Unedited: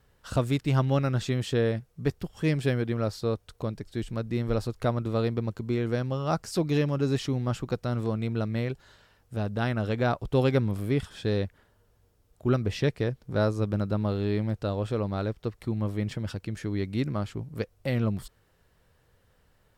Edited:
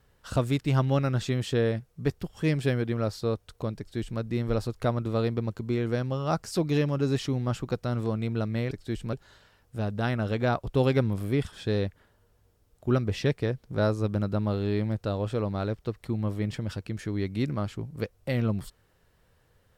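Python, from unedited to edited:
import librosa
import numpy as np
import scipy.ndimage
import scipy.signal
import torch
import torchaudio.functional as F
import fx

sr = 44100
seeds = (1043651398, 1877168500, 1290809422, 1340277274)

y = fx.edit(x, sr, fx.duplicate(start_s=3.78, length_s=0.42, to_s=8.71), tone=tone)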